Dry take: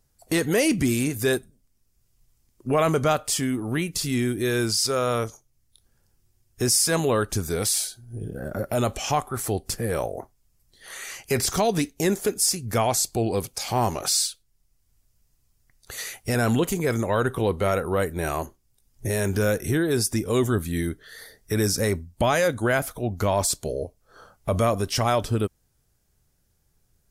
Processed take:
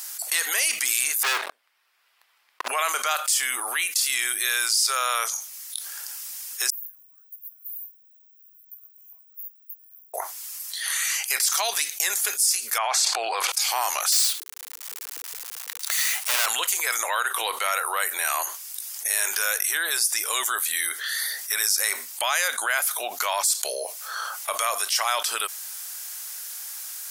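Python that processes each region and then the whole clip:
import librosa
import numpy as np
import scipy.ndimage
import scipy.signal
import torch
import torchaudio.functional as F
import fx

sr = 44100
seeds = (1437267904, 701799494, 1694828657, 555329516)

y = fx.chain(x, sr, fx.air_absorb(metres=450.0),
    fx.leveller(passes=5), at=(1.23, 2.68))
y = fx.chain(y, sr, fx.cheby2_bandstop(low_hz=170.0, high_hz=9800.0, order=4, stop_db=80),
    fx.high_shelf(hz=6300.0, db=7.5), at=(6.7, 10.14))
y = fx.chain(y, sr, fx.lowpass(hz=1300.0, slope=12),
    fx.tilt_eq(slope=4.0),
    fx.env_flatten(amount_pct=100), at=(12.78, 13.52))
y = fx.chain(y, sr, fx.halfwave_hold(),
    fx.hum_notches(base_hz=60, count=8), at=(14.12, 16.46))
y = scipy.signal.sosfilt(scipy.signal.bessel(4, 1400.0, 'highpass', norm='mag', fs=sr, output='sos'), y)
y = fx.high_shelf(y, sr, hz=6600.0, db=6.5)
y = fx.env_flatten(y, sr, amount_pct=70)
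y = y * 10.0 ** (-4.5 / 20.0)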